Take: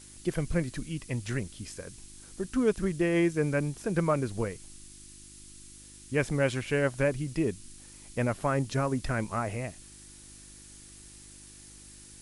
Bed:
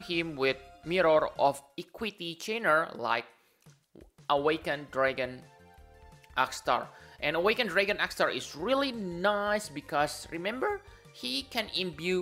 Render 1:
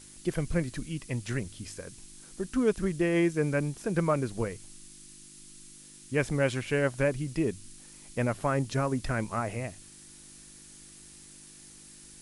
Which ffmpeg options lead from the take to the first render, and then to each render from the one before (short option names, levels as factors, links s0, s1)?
-af "bandreject=f=50:t=h:w=4,bandreject=f=100:t=h:w=4"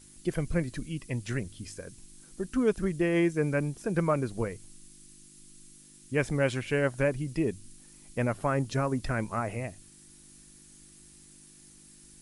-af "afftdn=nr=6:nf=-51"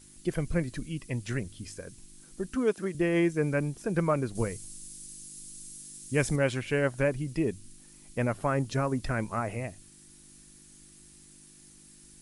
-filter_complex "[0:a]asettb=1/sr,asplit=3[s0][s1][s2];[s0]atrim=end=2.554[s3];[s1]atrim=start=2.55:end=2.95,asetpts=PTS-STARTPTS,afade=t=in:d=0.004:c=qsin,afade=t=out:st=0.396:d=0.004:c=qsin,highpass=240[s4];[s2]atrim=start=2.946[s5];[s3][s4]acrossfade=d=0.004:c1=hsin:c2=qsin[s6];[s6][s5]acrossfade=d=0.004:c1=qsin:c2=hsin,asettb=1/sr,asplit=3[s7][s8][s9];[s7]atrim=end=4.354[s10];[s8]atrim=start=4.35:end=6.36,asetpts=PTS-STARTPTS,afade=t=in:d=0.004:c=qsin,afade=t=out:st=2.006:d=0.004:c=qsin,bass=f=250:g=3,treble=f=4000:g=10[s11];[s9]atrim=start=6.356[s12];[s10][s11]acrossfade=d=0.004:c1=hsin:c2=qsin[s13];[s13][s12]acrossfade=d=0.004:c1=qsin:c2=hsin"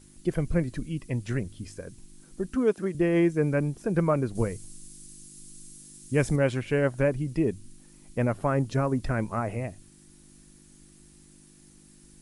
-af "tiltshelf=f=1400:g=3.5"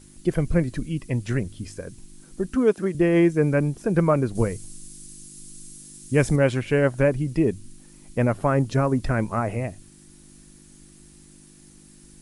-af "volume=1.68"